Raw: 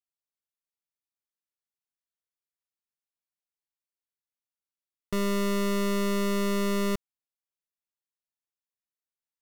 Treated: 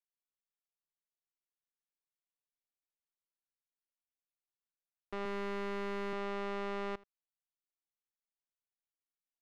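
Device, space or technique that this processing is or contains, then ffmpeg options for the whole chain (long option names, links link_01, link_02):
crystal radio: -filter_complex "[0:a]asettb=1/sr,asplit=3[link_01][link_02][link_03];[link_01]atrim=end=5.254[link_04];[link_02]atrim=start=5.25:end=6.13,asetpts=PTS-STARTPTS,afade=type=in:duration=0.004:curve=qsin,afade=type=out:start_time=0.876:duration=0.004:curve=qsin,highpass=frequency=75:width=0.5412,highpass=frequency=75:width=1.3066[link_05];[link_03]atrim=start=6.126[link_06];[link_04][link_05]acrossfade=duration=0.004:curve1=hsin:curve2=qsin[link_07];[link_07][link_06]acrossfade=duration=0.004:curve1=qsin:curve2=hsin,highpass=250,lowpass=2500,aeval=exprs='if(lt(val(0),0),0.251*val(0),val(0))':channel_layout=same,aecho=1:1:80:0.0794,volume=-4.5dB"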